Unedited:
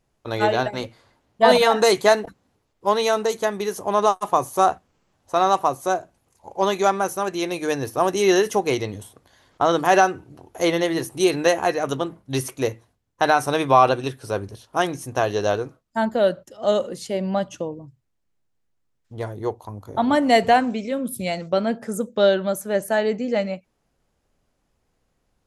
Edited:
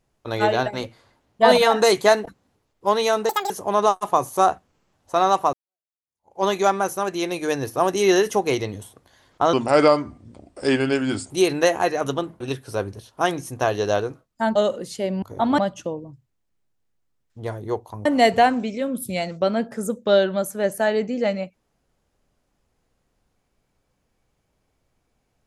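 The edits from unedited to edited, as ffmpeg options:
-filter_complex "[0:a]asplit=11[a][b][c][d][e][f][g][h][i][j][k];[a]atrim=end=3.294[l];[b]atrim=start=3.29:end=3.7,asetpts=PTS-STARTPTS,asetrate=85554,aresample=44100,atrim=end_sample=9320,asetpts=PTS-STARTPTS[m];[c]atrim=start=3.696:end=5.73,asetpts=PTS-STARTPTS,afade=t=out:st=2.03:d=0.004:c=hsin[n];[d]atrim=start=5.73:end=9.734,asetpts=PTS-STARTPTS,afade=t=in:d=0.91:c=exp[o];[e]atrim=start=9.73:end=11.13,asetpts=PTS-STARTPTS,asetrate=34839,aresample=44100[p];[f]atrim=start=11.126:end=12.232[q];[g]atrim=start=13.958:end=16.112[r];[h]atrim=start=16.658:end=17.332[s];[i]atrim=start=19.798:end=20.162[t];[j]atrim=start=17.328:end=19.802[u];[k]atrim=start=20.158[v];[l][m]acrossfade=d=0.004:c1=hsin:c2=hsin[w];[n][o]concat=n=2:v=0:a=1[x];[w][x]acrossfade=d=0.004:c1=hsin:c2=hsin[y];[y][p]acrossfade=d=0.004:c1=hsin:c2=hsin[z];[z][q]acrossfade=d=0.004:c1=hsin:c2=hsin[aa];[aa][r]acrossfade=d=0.004:c1=hsin:c2=hsin[ab];[ab][s]acrossfade=d=0.004:c1=hsin:c2=hsin[ac];[ac][t]acrossfade=d=0.004:c1=hsin:c2=hsin[ad];[ad][u]acrossfade=d=0.004:c1=hsin:c2=hsin[ae];[ae][v]acrossfade=d=0.004:c1=hsin:c2=hsin"

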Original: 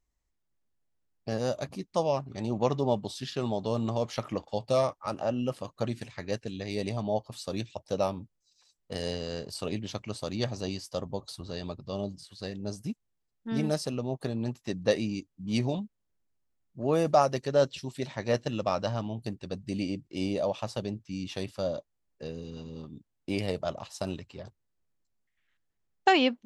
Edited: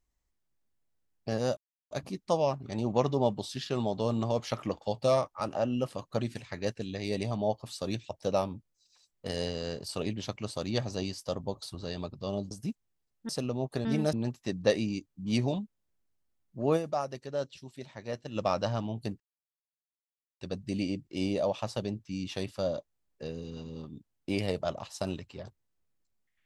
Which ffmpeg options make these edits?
-filter_complex "[0:a]asplit=9[a][b][c][d][e][f][g][h][i];[a]atrim=end=1.57,asetpts=PTS-STARTPTS,afade=t=out:st=1.566:d=0.004:c=hsin,apad=pad_dur=0.34[j];[b]atrim=start=1.57:end=12.172,asetpts=PTS-STARTPTS,afade=t=in:d=0.004:c=hsin[k];[c]atrim=start=12.718:end=13.502[l];[d]atrim=start=13.778:end=14.342[m];[e]atrim=start=13.498:end=13.782[n];[f]atrim=start=14.338:end=17.18,asetpts=PTS-STARTPTS,afade=t=out:st=2.632:d=0.21:c=exp:silence=0.334965[o];[g]atrim=start=17.18:end=18.37,asetpts=PTS-STARTPTS,volume=-9.5dB[p];[h]atrim=start=18.37:end=19.41,asetpts=PTS-STARTPTS,afade=t=in:d=0.21:c=exp:silence=0.334965,afade=t=out:st=1.036:d=0.004:c=hsin,apad=pad_dur=1.21[q];[i]atrim=start=19.41,asetpts=PTS-STARTPTS,afade=t=in:d=0.004:c=hsin[r];[j][k]concat=n=2:v=0:a=1[s];[s][l]acrossfade=d=0.004:c1=hsin:c2=hsin[t];[t][m]acrossfade=d=0.004:c1=hsin:c2=hsin[u];[u][n]acrossfade=d=0.004:c1=hsin:c2=hsin[v];[o][p][q][r]concat=n=4:v=0:a=1[w];[v][w]acrossfade=d=0.004:c1=hsin:c2=hsin"

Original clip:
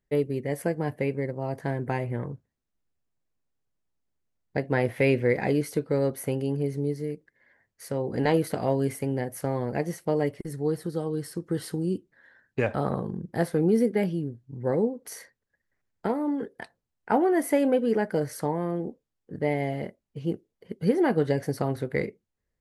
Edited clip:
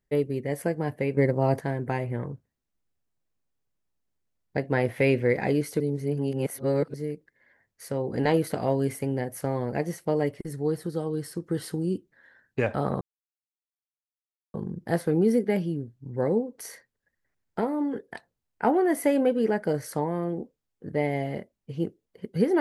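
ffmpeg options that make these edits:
-filter_complex "[0:a]asplit=6[a][b][c][d][e][f];[a]atrim=end=1.172[g];[b]atrim=start=1.168:end=1.602,asetpts=PTS-STARTPTS,volume=8dB[h];[c]atrim=start=1.598:end=5.802[i];[d]atrim=start=5.798:end=6.942,asetpts=PTS-STARTPTS,areverse[j];[e]atrim=start=6.938:end=13.01,asetpts=PTS-STARTPTS,afade=t=out:st=6.068:d=0.004:c=hsin,apad=pad_dur=1.53[k];[f]atrim=start=13.01,asetpts=PTS-STARTPTS,afade=t=in:d=0.004:c=hsin[l];[g][h]acrossfade=d=0.004:c1=hsin:c2=hsin[m];[m][i]acrossfade=d=0.004:c1=hsin:c2=hsin[n];[n][j]acrossfade=d=0.004:c1=hsin:c2=hsin[o];[k][l]concat=n=2:v=0:a=1[p];[o][p]acrossfade=d=0.004:c1=hsin:c2=hsin"

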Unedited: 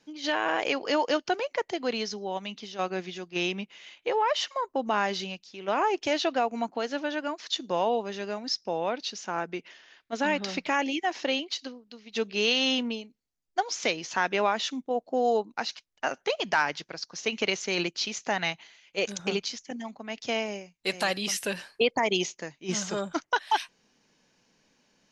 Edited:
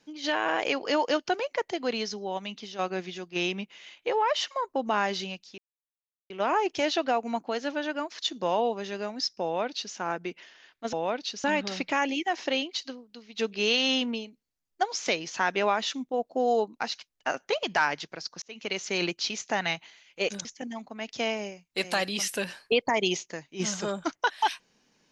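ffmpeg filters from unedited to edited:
-filter_complex "[0:a]asplit=6[a][b][c][d][e][f];[a]atrim=end=5.58,asetpts=PTS-STARTPTS,afade=t=out:st=5.576:d=0.004:c=hsin,apad=pad_dur=0.72[g];[b]atrim=start=5.58:end=10.212,asetpts=PTS-STARTPTS,afade=t=in:d=0.004:c=hsin[h];[c]atrim=start=8.718:end=9.232[i];[d]atrim=start=10.208:end=17.19,asetpts=PTS-STARTPTS,afade=t=out:st=6.978:d=0.004:c=hsin[j];[e]atrim=start=17.19:end=19.222,asetpts=PTS-STARTPTS,afade=t=in:d=0.5[k];[f]atrim=start=19.538[l];[g][h]concat=n=2:v=0:a=1[m];[m][i]acrossfade=d=0.004:c1=hsin:c2=hsin[n];[j][k]concat=n=2:v=0:a=1[o];[n][o]acrossfade=d=0.004:c1=hsin:c2=hsin[p];[p][l]acrossfade=d=0.004:c1=hsin:c2=hsin"

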